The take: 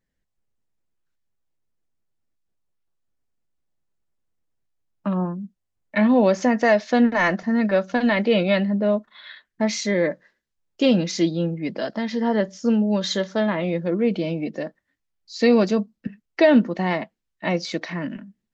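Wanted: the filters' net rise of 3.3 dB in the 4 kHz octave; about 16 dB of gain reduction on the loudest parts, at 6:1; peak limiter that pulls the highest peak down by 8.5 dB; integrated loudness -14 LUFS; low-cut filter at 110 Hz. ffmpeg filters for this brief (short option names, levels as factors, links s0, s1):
-af "highpass=110,equalizer=f=4000:t=o:g=4,acompressor=threshold=0.0355:ratio=6,volume=10,alimiter=limit=0.631:level=0:latency=1"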